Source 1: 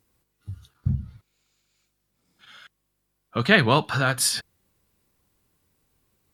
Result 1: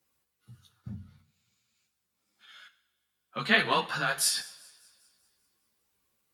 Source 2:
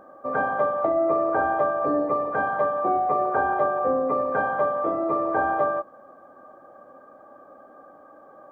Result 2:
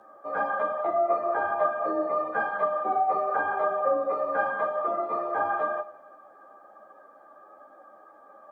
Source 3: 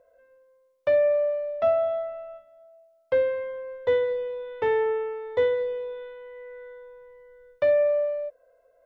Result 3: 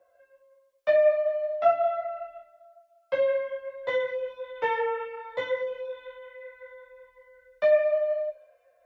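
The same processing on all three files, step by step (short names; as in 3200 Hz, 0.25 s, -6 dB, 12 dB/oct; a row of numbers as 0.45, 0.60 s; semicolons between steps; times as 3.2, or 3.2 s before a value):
low shelf 430 Hz -11.5 dB; thin delay 0.197 s, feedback 54%, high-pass 2000 Hz, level -23.5 dB; two-slope reverb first 0.54 s, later 1.7 s, from -17 dB, DRR 9.5 dB; frequency shift +22 Hz; ensemble effect; match loudness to -27 LUFS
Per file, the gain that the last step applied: -1.0, +2.5, +5.0 dB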